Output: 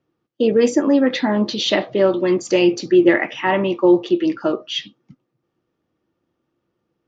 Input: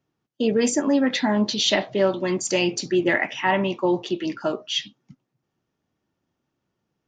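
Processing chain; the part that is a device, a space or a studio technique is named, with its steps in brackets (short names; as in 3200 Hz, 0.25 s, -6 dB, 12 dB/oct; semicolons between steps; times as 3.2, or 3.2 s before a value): inside a cardboard box (LPF 4800 Hz 12 dB/oct; small resonant body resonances 340/490/1200 Hz, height 9 dB, ringing for 45 ms); gain +1.5 dB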